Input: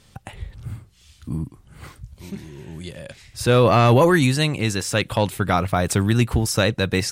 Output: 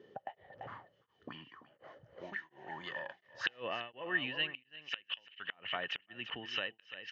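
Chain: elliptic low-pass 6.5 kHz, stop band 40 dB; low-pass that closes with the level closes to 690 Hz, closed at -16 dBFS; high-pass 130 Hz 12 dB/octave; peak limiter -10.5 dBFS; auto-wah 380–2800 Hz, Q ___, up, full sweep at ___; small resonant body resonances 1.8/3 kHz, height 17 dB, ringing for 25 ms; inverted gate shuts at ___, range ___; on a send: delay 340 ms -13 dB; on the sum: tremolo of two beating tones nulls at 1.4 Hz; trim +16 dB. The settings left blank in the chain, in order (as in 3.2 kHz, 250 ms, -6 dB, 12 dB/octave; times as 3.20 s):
9.2, -27 dBFS, -35 dBFS, -28 dB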